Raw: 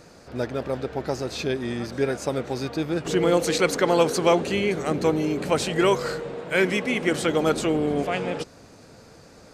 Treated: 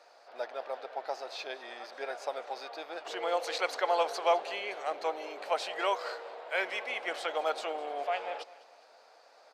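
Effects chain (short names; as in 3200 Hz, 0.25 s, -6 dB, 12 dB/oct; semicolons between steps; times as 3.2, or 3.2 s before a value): ladder high-pass 600 Hz, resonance 50%; resonant high shelf 5700 Hz -6.5 dB, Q 1.5; feedback echo 0.205 s, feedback 39%, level -19 dB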